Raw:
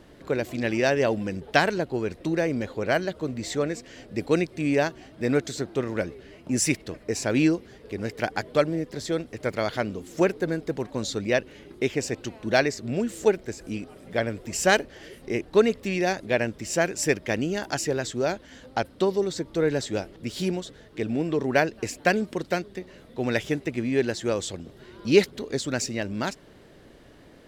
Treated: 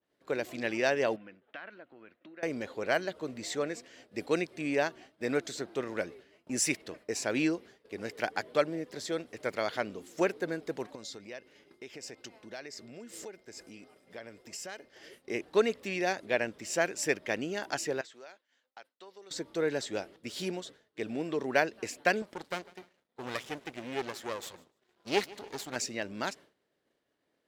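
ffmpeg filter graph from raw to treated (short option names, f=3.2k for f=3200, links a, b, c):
-filter_complex "[0:a]asettb=1/sr,asplit=3[a][b][c];[a]atrim=end=1.164[d];[b]atrim=start=1.16:end=2.43,asetpts=PTS-STARTPTS,afade=t=in:d=0.004:c=qsin,afade=t=out:st=1.266:d=0.004:c=qsin,acompressor=threshold=-34dB:ratio=12:attack=3.2:release=140:knee=1:detection=peak,highpass=140,equalizer=f=160:t=q:w=4:g=-9,equalizer=f=420:t=q:w=4:g=-10,equalizer=f=860:t=q:w=4:g=-6,equalizer=f=1.4k:t=q:w=4:g=5,lowpass=f=3.1k:w=0.5412,lowpass=f=3.1k:w=1.3066[e];[c]atrim=start=2.426[f];[d][e]acrossfade=d=0.004:c1=hsin:c2=qsin[g];[g][f]acrossfade=d=0.004:c1=qsin:c2=hsin,asettb=1/sr,asplit=3[h][i][j];[h]atrim=end=10.954[k];[i]atrim=start=10.95:end=15.11,asetpts=PTS-STARTPTS,afade=t=in:d=0.004:c=qsin,afade=t=out:st=4.156:d=0.004:c=qsin,equalizer=f=5.1k:w=7.7:g=7,acompressor=threshold=-35dB:ratio=6:attack=3.2:release=140:knee=1:detection=peak,aeval=exprs='val(0)+0.000794*sin(2*PI*2100*n/s)':c=same[l];[j]atrim=start=15.106[m];[k][l]acrossfade=d=0.004:c1=hsin:c2=qsin[n];[n][m]acrossfade=d=0.004:c1=qsin:c2=hsin,asettb=1/sr,asplit=3[o][p][q];[o]atrim=end=18.014[r];[p]atrim=start=18.01:end=19.31,asetpts=PTS-STARTPTS,afade=t=in:d=0.004:c=qsin,afade=t=out:st=1.296:d=0.004:c=qsin,highpass=f=1.5k:p=1,acompressor=threshold=-38dB:ratio=6:attack=3.2:release=140:knee=1:detection=peak,highshelf=f=5.8k:g=-11.5[s];[q]atrim=start=19.306[t];[r][s]acrossfade=d=0.004:c1=hsin:c2=qsin[u];[u][t]acrossfade=d=0.004:c1=qsin:c2=hsin,asettb=1/sr,asplit=3[v][w][x];[v]atrim=end=22.224[y];[w]atrim=start=22.22:end=25.76,asetpts=PTS-STARTPTS,afade=t=in:d=0.004:c=qsin,afade=t=out:st=3.536:d=0.004:c=qsin,aeval=exprs='max(val(0),0)':c=same,aecho=1:1:150|300|450|600:0.0944|0.05|0.0265|0.0141,atrim=end_sample=156114[z];[x]atrim=start=25.756[aa];[y][z]acrossfade=d=0.004:c1=hsin:c2=qsin[ab];[ab][aa]acrossfade=d=0.004:c1=qsin:c2=hsin,highpass=f=440:p=1,agate=range=-33dB:threshold=-42dB:ratio=3:detection=peak,adynamicequalizer=threshold=0.00631:dfrequency=4100:dqfactor=0.7:tfrequency=4100:tqfactor=0.7:attack=5:release=100:ratio=0.375:range=2:mode=cutabove:tftype=highshelf,volume=-3.5dB"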